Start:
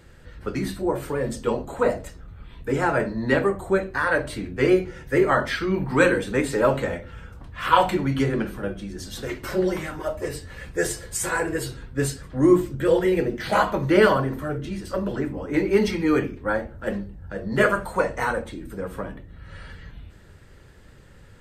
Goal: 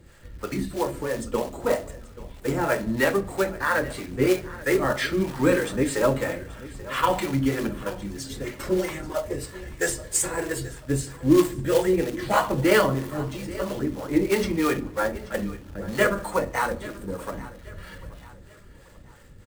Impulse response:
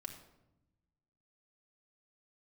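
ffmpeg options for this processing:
-filter_complex "[0:a]equalizer=f=7.8k:t=o:w=0.52:g=4.5,bandreject=f=1.5k:w=18,atempo=1.1,acrusher=bits=4:mode=log:mix=0:aa=0.000001,acrossover=split=470[a][b];[a]aeval=exprs='val(0)*(1-0.7/2+0.7/2*cos(2*PI*3.1*n/s))':c=same[c];[b]aeval=exprs='val(0)*(1-0.7/2-0.7/2*cos(2*PI*3.1*n/s))':c=same[d];[c][d]amix=inputs=2:normalize=0,aecho=1:1:833|1666|2499:0.126|0.0516|0.0212,asplit=2[e][f];[1:a]atrim=start_sample=2205[g];[f][g]afir=irnorm=-1:irlink=0,volume=-7.5dB[h];[e][h]amix=inputs=2:normalize=0"

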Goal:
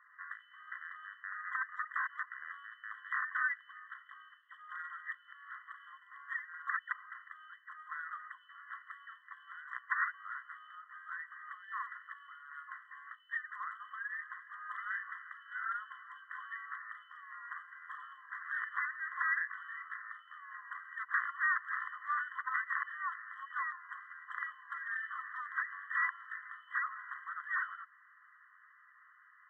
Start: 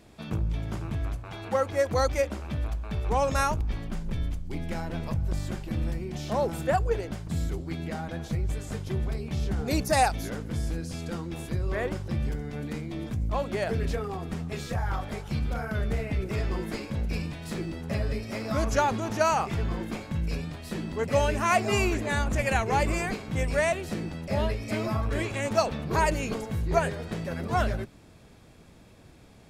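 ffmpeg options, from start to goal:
-af "aeval=exprs='(mod(6.68*val(0)+1,2)-1)/6.68':c=same,lowpass=f=2.5k:t=q:w=0.5098,lowpass=f=2.5k:t=q:w=0.6013,lowpass=f=2.5k:t=q:w=0.9,lowpass=f=2.5k:t=q:w=2.563,afreqshift=-2900,acompressor=threshold=-32dB:ratio=4,afftfilt=real='re*eq(mod(floor(b*sr/1024/1000),2),1)':imag='im*eq(mod(floor(b*sr/1024/1000),2),1)':win_size=1024:overlap=0.75,volume=5.5dB"

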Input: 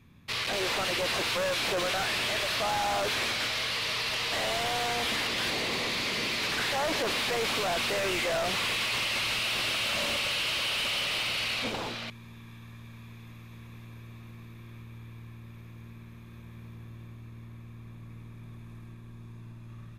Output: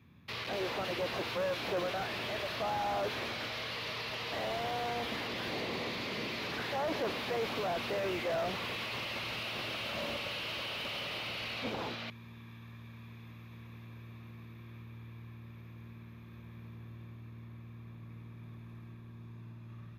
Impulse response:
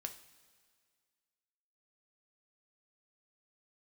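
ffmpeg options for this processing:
-filter_complex "[0:a]highpass=66,equalizer=f=8.4k:t=o:w=0.91:g=-12.5,acrossover=split=920[a][b];[b]alimiter=level_in=7.5dB:limit=-24dB:level=0:latency=1,volume=-7.5dB[c];[a][c]amix=inputs=2:normalize=0,volume=-2.5dB"

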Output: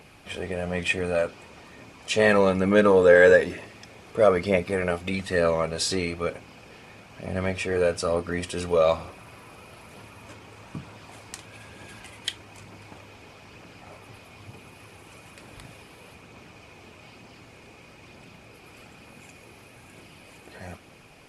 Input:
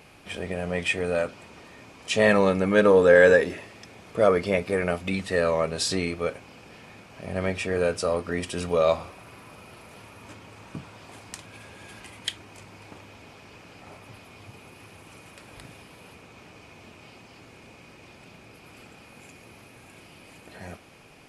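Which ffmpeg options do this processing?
-af "aphaser=in_gain=1:out_gain=1:delay=2.7:decay=0.24:speed=1.1:type=triangular"

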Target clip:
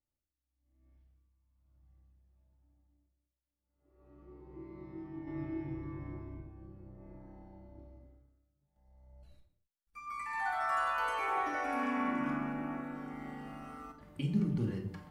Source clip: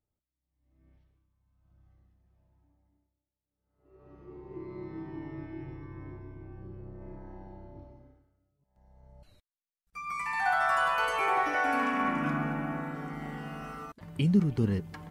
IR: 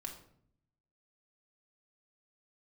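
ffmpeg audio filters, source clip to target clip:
-filter_complex "[0:a]asettb=1/sr,asplit=3[a][b][c];[a]atrim=end=5.274[d];[b]atrim=start=5.27:end=6.41,asetpts=PTS-STARTPTS,afade=t=in:d=0.004:c=qsin,afade=t=out:st=1.136:d=0.004:c=qsin,acontrast=65[e];[c]atrim=start=6.406[f];[d][e]acrossfade=d=0.004:c1=hsin:c2=qsin[g];[g][f]acrossfade=d=0.004:c1=qsin:c2=hsin[h];[1:a]atrim=start_sample=2205,afade=t=out:st=0.33:d=0.01,atrim=end_sample=14994[i];[h][i]afir=irnorm=-1:irlink=0,volume=-4.5dB"

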